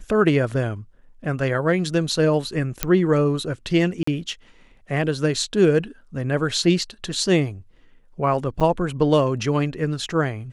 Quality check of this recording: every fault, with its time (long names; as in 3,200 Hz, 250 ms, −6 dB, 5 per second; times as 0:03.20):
0:02.83: click −2 dBFS
0:04.03–0:04.07: drop-out 44 ms
0:08.60–0:08.61: drop-out 7.5 ms